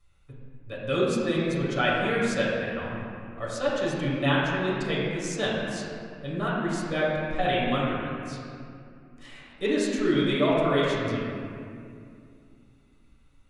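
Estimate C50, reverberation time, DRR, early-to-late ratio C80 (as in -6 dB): -2.0 dB, 2.4 s, -8.0 dB, -0.5 dB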